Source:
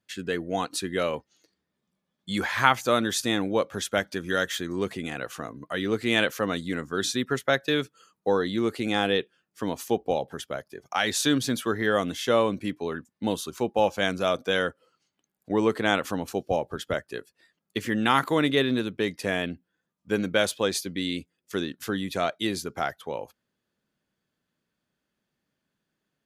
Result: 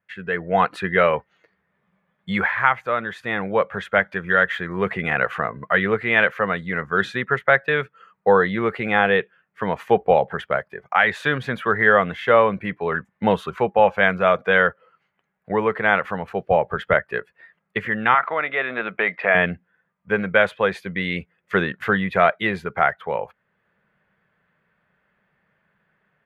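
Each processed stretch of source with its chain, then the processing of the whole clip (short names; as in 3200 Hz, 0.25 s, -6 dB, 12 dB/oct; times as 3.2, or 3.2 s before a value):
18.14–19.35 compressor 1.5:1, threshold -32 dBFS + speaker cabinet 290–4300 Hz, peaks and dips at 410 Hz -4 dB, 680 Hz +8 dB, 1300 Hz +6 dB, 2300 Hz +5 dB
whole clip: EQ curve 110 Hz 0 dB, 190 Hz +3 dB, 280 Hz -12 dB, 430 Hz +2 dB, 2000 Hz +9 dB, 5600 Hz -23 dB; AGC gain up to 11.5 dB; gain -1 dB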